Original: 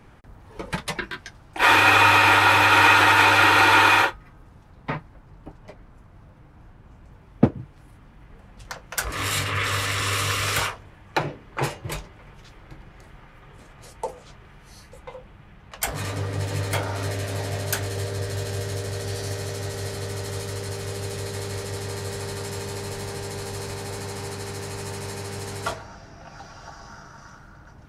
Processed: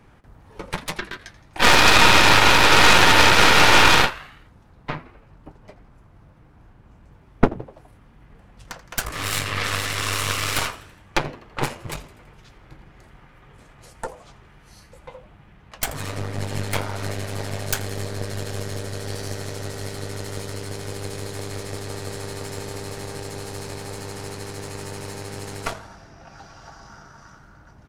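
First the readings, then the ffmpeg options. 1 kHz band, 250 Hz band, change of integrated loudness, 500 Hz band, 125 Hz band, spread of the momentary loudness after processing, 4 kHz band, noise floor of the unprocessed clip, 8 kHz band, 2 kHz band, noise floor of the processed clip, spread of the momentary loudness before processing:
-0.5 dB, +2.0 dB, +2.5 dB, +2.5 dB, -0.5 dB, 22 LU, +5.5 dB, -50 dBFS, +4.0 dB, +0.5 dB, -51 dBFS, 19 LU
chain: -filter_complex "[0:a]asplit=6[s0][s1][s2][s3][s4][s5];[s1]adelay=83,afreqshift=100,volume=0.15[s6];[s2]adelay=166,afreqshift=200,volume=0.0794[s7];[s3]adelay=249,afreqshift=300,volume=0.0422[s8];[s4]adelay=332,afreqshift=400,volume=0.0224[s9];[s5]adelay=415,afreqshift=500,volume=0.0117[s10];[s0][s6][s7][s8][s9][s10]amix=inputs=6:normalize=0,aeval=exprs='0.841*(cos(1*acos(clip(val(0)/0.841,-1,1)))-cos(1*PI/2))+0.335*(cos(6*acos(clip(val(0)/0.841,-1,1)))-cos(6*PI/2))':c=same,volume=0.794"

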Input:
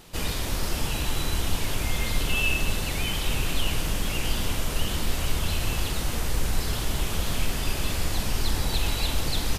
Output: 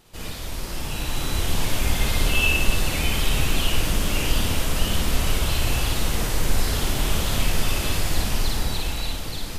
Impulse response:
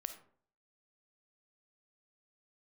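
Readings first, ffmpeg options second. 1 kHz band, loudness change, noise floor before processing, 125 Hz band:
+3.5 dB, +3.5 dB, -30 dBFS, +3.5 dB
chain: -filter_complex "[0:a]dynaudnorm=f=140:g=17:m=3.16,asplit=2[s0][s1];[1:a]atrim=start_sample=2205,adelay=56[s2];[s1][s2]afir=irnorm=-1:irlink=0,volume=1.26[s3];[s0][s3]amix=inputs=2:normalize=0,volume=0.447"

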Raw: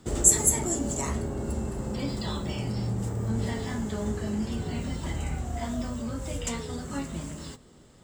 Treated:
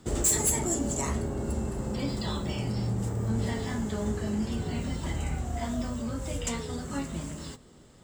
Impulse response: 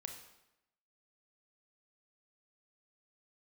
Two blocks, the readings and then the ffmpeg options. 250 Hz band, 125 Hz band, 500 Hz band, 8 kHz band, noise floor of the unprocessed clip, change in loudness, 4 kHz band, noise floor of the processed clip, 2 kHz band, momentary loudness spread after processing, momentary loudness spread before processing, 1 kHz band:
0.0 dB, 0.0 dB, 0.0 dB, -4.0 dB, -53 dBFS, -1.5 dB, 0.0 dB, -53 dBFS, 0.0 dB, 9 LU, 12 LU, 0.0 dB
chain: -af "asoftclip=type=hard:threshold=0.0944"

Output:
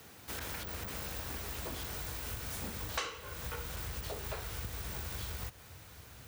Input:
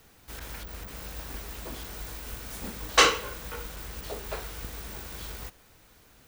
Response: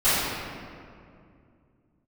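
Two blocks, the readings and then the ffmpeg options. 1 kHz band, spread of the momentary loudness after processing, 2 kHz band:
-12.5 dB, 5 LU, -12.0 dB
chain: -af "highpass=f=76:w=0.5412,highpass=f=76:w=1.3066,asubboost=boost=5.5:cutoff=100,acompressor=threshold=0.00891:ratio=6,volume=1.58"

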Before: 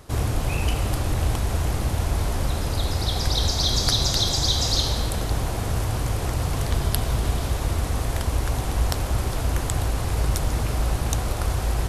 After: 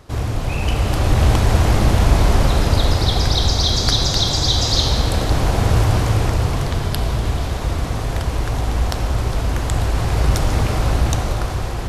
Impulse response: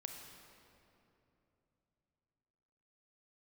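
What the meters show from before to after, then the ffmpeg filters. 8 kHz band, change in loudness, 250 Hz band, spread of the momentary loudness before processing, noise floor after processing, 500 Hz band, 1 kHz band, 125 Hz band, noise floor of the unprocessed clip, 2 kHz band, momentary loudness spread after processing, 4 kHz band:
+2.0 dB, +6.0 dB, +7.5 dB, 6 LU, -23 dBFS, +7.0 dB, +7.0 dB, +6.5 dB, -28 dBFS, +6.5 dB, 7 LU, +4.5 dB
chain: -filter_complex "[0:a]dynaudnorm=f=210:g=9:m=3.76,asplit=2[s0][s1];[1:a]atrim=start_sample=2205,lowpass=7200[s2];[s1][s2]afir=irnorm=-1:irlink=0,volume=1.88[s3];[s0][s3]amix=inputs=2:normalize=0,volume=0.562"

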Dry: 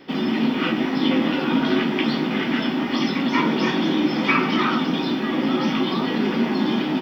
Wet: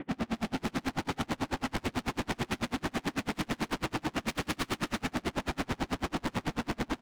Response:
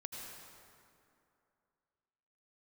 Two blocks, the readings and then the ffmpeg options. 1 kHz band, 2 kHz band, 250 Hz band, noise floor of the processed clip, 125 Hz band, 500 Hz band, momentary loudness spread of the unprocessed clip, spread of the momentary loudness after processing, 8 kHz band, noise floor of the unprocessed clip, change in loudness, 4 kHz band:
-10.5 dB, -11.5 dB, -15.5 dB, -61 dBFS, -7.5 dB, -13.0 dB, 3 LU, 1 LU, no reading, -25 dBFS, -13.0 dB, -13.0 dB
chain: -filter_complex "[0:a]lowpass=f=2500:w=0.5412,lowpass=f=2500:w=1.3066[s0];[1:a]atrim=start_sample=2205,asetrate=30429,aresample=44100[s1];[s0][s1]afir=irnorm=-1:irlink=0,alimiter=limit=0.158:level=0:latency=1:release=11,aeval=exprs='0.158*sin(PI/2*2.51*val(0)/0.158)':c=same,lowshelf=f=330:g=10.5,bandreject=f=390:w=12,asplit=2[s2][s3];[s3]aecho=0:1:85:0.316[s4];[s2][s4]amix=inputs=2:normalize=0,asoftclip=type=hard:threshold=0.0447,aeval=exprs='val(0)*pow(10,-35*(0.5-0.5*cos(2*PI*9.1*n/s))/20)':c=same"

